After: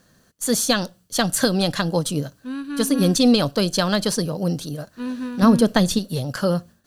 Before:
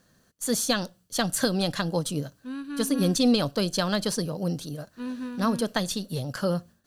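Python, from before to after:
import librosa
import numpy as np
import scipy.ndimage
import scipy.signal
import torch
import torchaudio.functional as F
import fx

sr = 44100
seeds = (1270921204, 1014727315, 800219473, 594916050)

y = fx.low_shelf(x, sr, hz=460.0, db=8.0, at=(5.42, 5.99))
y = y * librosa.db_to_amplitude(5.5)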